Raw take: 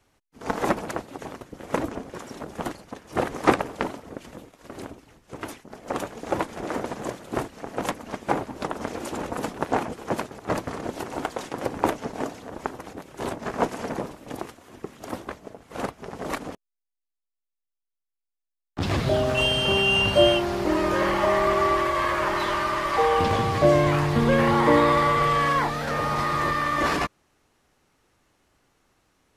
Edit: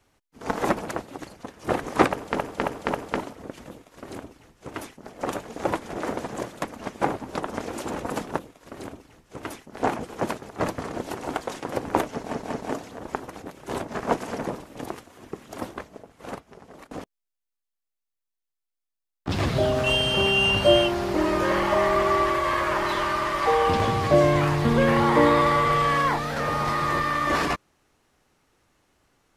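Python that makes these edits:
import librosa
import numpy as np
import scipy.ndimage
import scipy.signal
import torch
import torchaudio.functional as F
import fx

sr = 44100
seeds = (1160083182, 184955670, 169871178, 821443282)

y = fx.edit(x, sr, fx.cut(start_s=1.22, length_s=1.48),
    fx.repeat(start_s=3.6, length_s=0.27, count=4),
    fx.duplicate(start_s=4.37, length_s=1.38, to_s=9.66),
    fx.cut(start_s=7.29, length_s=0.6),
    fx.stutter(start_s=12.03, slice_s=0.19, count=3),
    fx.fade_out_to(start_s=15.16, length_s=1.26, floor_db=-23.0), tone=tone)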